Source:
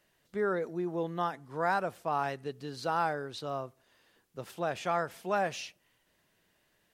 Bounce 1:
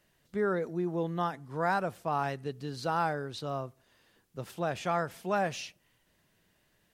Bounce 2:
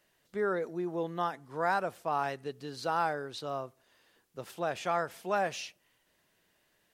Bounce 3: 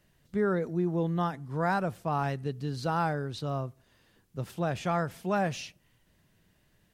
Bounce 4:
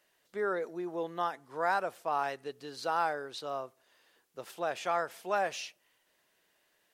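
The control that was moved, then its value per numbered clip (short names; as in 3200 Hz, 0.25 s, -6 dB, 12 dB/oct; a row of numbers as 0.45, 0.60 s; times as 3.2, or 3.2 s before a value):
tone controls, bass: +6, -3, +14, -14 dB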